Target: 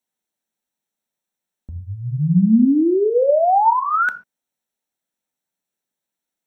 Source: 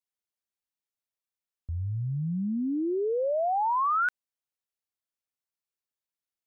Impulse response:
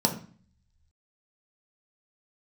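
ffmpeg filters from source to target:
-filter_complex "[0:a]asplit=2[a][b];[1:a]atrim=start_sample=2205,atrim=end_sample=6615[c];[b][c]afir=irnorm=-1:irlink=0,volume=-13dB[d];[a][d]amix=inputs=2:normalize=0,volume=5.5dB"

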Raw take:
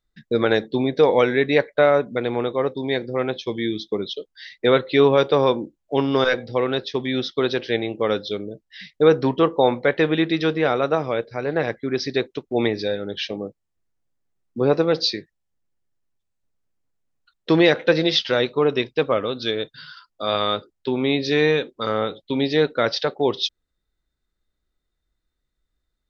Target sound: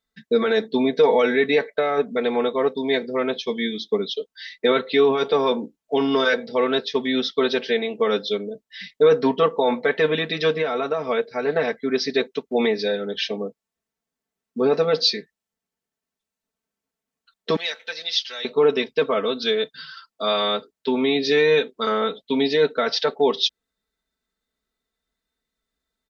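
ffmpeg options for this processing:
-filter_complex "[0:a]asettb=1/sr,asplit=3[a][b][c];[a]atrim=end=17.564[d];[b]atrim=start=17.56:end=18.45,asetpts=PTS-STARTPTS,afade=t=in:d=0.004:c=qsin,afade=t=out:st=0.886:d=0.004:c=qsin,aderivative[e];[c]atrim=start=18.446[f];[d][e]acrossfade=d=0.004:c1=hsin:c2=qsin[g];[g][f]acrossfade=d=0.004:c1=qsin:c2=hsin,alimiter=limit=-11dB:level=0:latency=1:release=15,highpass=f=240:p=1,aecho=1:1:4.5:0.96,asettb=1/sr,asplit=3[h][i][j];[h]atrim=end=10.584[k];[i]atrim=start=10.58:end=11.07,asetpts=PTS-STARTPTS,afade=t=in:d=0.004:c=qsin,afade=t=out:st=0.486:d=0.004:c=qsin,acompressor=threshold=-20dB:ratio=4[l];[j]atrim=start=11.066[m];[k][l]acrossfade=d=0.004:c1=hsin:c2=qsin[n];[n][m]acrossfade=d=0.004:c1=qsin:c2=hsin"

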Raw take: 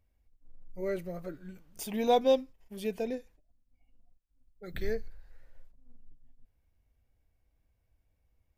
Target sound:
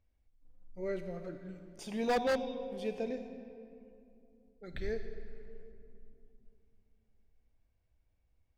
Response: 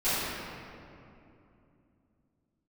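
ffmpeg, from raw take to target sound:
-filter_complex "[0:a]lowpass=6.1k,asplit=2[a][b];[1:a]atrim=start_sample=2205,highshelf=f=3.8k:g=7.5,adelay=32[c];[b][c]afir=irnorm=-1:irlink=0,volume=-22.5dB[d];[a][d]amix=inputs=2:normalize=0,aeval=exprs='0.0944*(abs(mod(val(0)/0.0944+3,4)-2)-1)':c=same,volume=-3.5dB"

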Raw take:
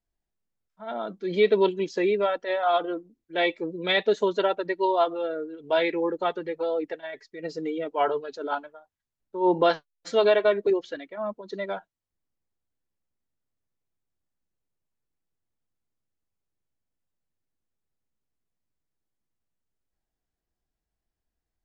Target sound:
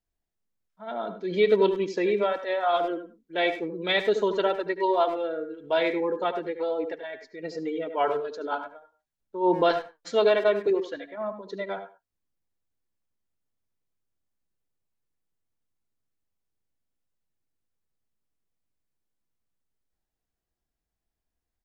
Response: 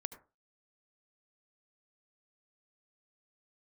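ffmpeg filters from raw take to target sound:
-filter_complex "[0:a]asplit=2[a][b];[b]adelay=100,highpass=300,lowpass=3.4k,asoftclip=type=hard:threshold=-19.5dB,volume=-14dB[c];[a][c]amix=inputs=2:normalize=0[d];[1:a]atrim=start_sample=2205,afade=t=out:st=0.15:d=0.01,atrim=end_sample=7056[e];[d][e]afir=irnorm=-1:irlink=0,volume=1.5dB"

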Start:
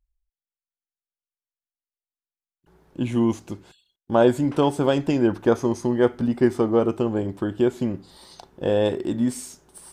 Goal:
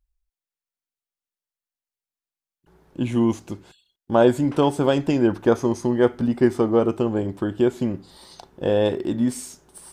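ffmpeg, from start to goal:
-filter_complex "[0:a]asettb=1/sr,asplit=3[a][b][c];[a]atrim=end=8.674[d];[b]atrim=start=8.67:end=9.32,asetpts=PTS-STARTPTS,afade=t=in:d=0.004:c=qsin,afade=t=out:st=0.646:d=0.004:c=qsin,equalizer=f=7.9k:t=o:w=0.24:g=-6.5[e];[c]atrim=start=9.316[f];[d][e]acrossfade=d=0.004:c1=hsin:c2=qsin[g];[g][f]acrossfade=d=0.004:c1=qsin:c2=hsin,volume=1dB"

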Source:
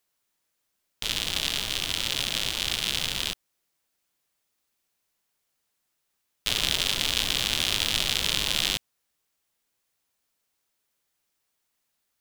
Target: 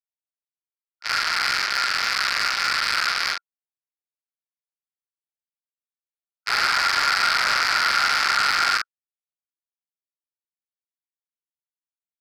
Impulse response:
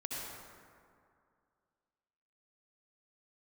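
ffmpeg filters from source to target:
-filter_complex "[0:a]afwtdn=0.0224,agate=range=-33dB:threshold=-24dB:ratio=3:detection=peak,equalizer=f=7.3k:w=1.6:g=-8.5,acrossover=split=210[a][b];[b]alimiter=limit=-18.5dB:level=0:latency=1:release=10[c];[a][c]amix=inputs=2:normalize=0,asoftclip=type=tanh:threshold=-20dB,aresample=22050,aresample=44100,aeval=exprs='val(0)*sin(2*PI*1400*n/s)':c=same,asplit=2[d][e];[e]adelay=44,volume=-3.5dB[f];[d][f]amix=inputs=2:normalize=0,asplit=2[g][h];[h]highpass=f=720:p=1,volume=27dB,asoftclip=type=tanh:threshold=-3dB[i];[g][i]amix=inputs=2:normalize=0,lowpass=f=5.8k:p=1,volume=-6dB,volume=-1.5dB"

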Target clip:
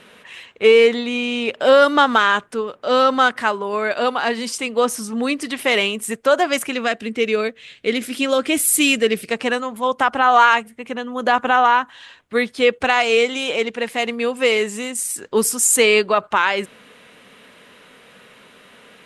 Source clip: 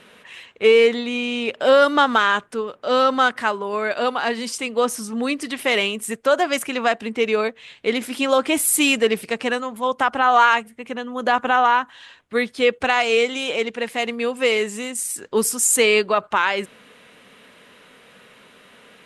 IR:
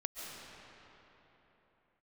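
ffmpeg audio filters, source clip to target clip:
-filter_complex "[0:a]asettb=1/sr,asplit=3[a][b][c];[a]atrim=end=6.734[d];[b]atrim=start=6.73:end=9.31,asetpts=PTS-STARTPTS,afade=t=in:d=0.004:c=qsin,afade=t=out:st=2.576:d=0.004:c=qsin,equalizer=f=900:t=o:w=0.75:g=-10.5[e];[c]atrim=start=9.306[f];[d][e]acrossfade=d=0.004:c1=hsin:c2=qsin[g];[g][f]acrossfade=d=0.004:c1=qsin:c2=hsin,volume=2dB"

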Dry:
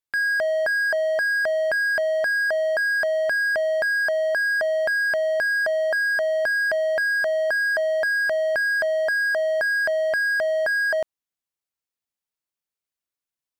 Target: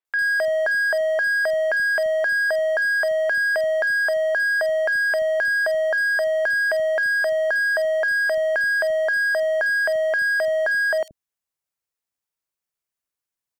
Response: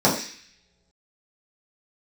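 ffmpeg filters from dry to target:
-filter_complex "[0:a]acrossover=split=260|3500[a][b][c];[c]adelay=50[d];[a]adelay=80[e];[e][b][d]amix=inputs=3:normalize=0,aeval=exprs='0.158*(cos(1*acos(clip(val(0)/0.158,-1,1)))-cos(1*PI/2))+0.00224*(cos(2*acos(clip(val(0)/0.158,-1,1)))-cos(2*PI/2))+0.00398*(cos(5*acos(clip(val(0)/0.158,-1,1)))-cos(5*PI/2))':c=same,volume=1.5dB"

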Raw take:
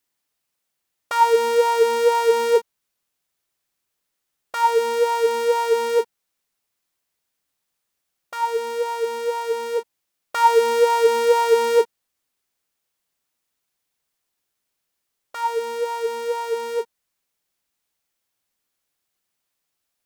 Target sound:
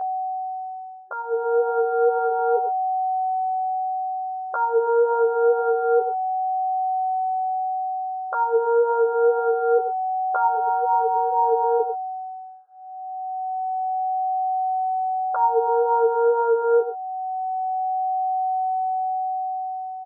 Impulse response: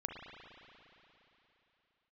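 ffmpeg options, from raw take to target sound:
-filter_complex "[0:a]aecho=1:1:96:0.188,acompressor=threshold=-24dB:ratio=6,alimiter=level_in=1dB:limit=-24dB:level=0:latency=1:release=287,volume=-1dB,dynaudnorm=f=230:g=11:m=14dB,aeval=exprs='val(0)+0.1*sin(2*PI*750*n/s)':c=same,afftfilt=real='re*between(b*sr/4096,380,1700)':imag='im*between(b*sr/4096,380,1700)':win_size=4096:overlap=0.75,asplit=2[a][b];[b]adelay=11.3,afreqshift=0.26[c];[a][c]amix=inputs=2:normalize=1"

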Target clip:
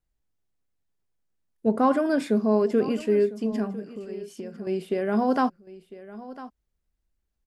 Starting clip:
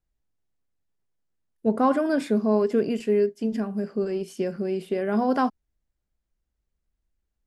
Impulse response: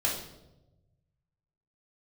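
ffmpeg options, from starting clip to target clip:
-filter_complex "[0:a]asettb=1/sr,asplit=3[a][b][c];[a]atrim=end=3.754[d];[b]atrim=start=3.75:end=4.67,asetpts=PTS-STARTPTS,afade=t=in:d=0.004:c=qsin,afade=t=out:st=0.916:d=0.004:c=qsin,acompressor=threshold=-35dB:ratio=6[e];[c]atrim=start=4.666[f];[d][e]acrossfade=d=0.004:c1=hsin:c2=qsin[g];[g][f]acrossfade=d=0.004:c1=qsin:c2=hsin,aecho=1:1:1002:0.141"

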